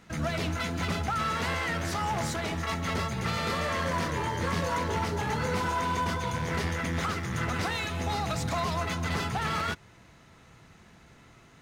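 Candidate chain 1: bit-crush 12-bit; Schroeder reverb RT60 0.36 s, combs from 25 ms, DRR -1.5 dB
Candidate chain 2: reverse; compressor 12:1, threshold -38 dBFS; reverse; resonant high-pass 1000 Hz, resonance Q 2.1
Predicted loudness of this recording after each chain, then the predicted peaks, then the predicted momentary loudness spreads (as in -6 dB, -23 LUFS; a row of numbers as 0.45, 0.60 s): -26.5, -39.5 LUFS; -13.5, -27.0 dBFS; 2, 18 LU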